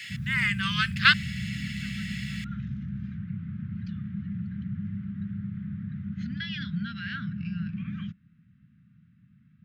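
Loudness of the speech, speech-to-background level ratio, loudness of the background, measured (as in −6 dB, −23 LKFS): −24.0 LKFS, 10.5 dB, −34.5 LKFS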